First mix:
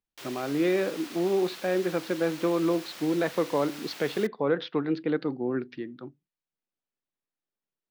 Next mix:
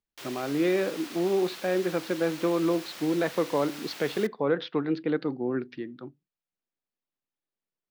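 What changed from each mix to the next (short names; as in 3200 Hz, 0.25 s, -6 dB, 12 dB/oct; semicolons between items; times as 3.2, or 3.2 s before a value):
reverb: on, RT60 0.85 s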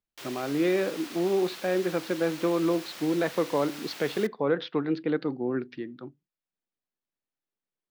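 none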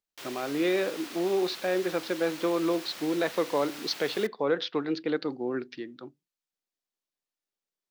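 speech: add tone controls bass -8 dB, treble +13 dB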